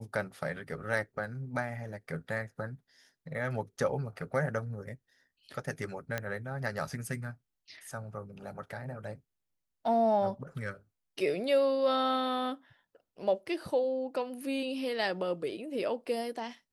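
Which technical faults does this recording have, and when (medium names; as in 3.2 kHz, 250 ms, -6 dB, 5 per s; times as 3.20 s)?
6.18 s: pop -18 dBFS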